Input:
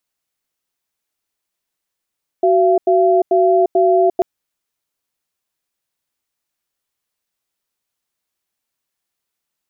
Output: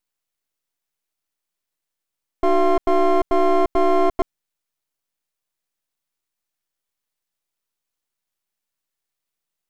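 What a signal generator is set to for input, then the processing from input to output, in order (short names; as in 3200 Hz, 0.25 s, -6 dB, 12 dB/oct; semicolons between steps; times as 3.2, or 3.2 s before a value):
cadence 374 Hz, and 682 Hz, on 0.35 s, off 0.09 s, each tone -12.5 dBFS 1.79 s
half-wave rectifier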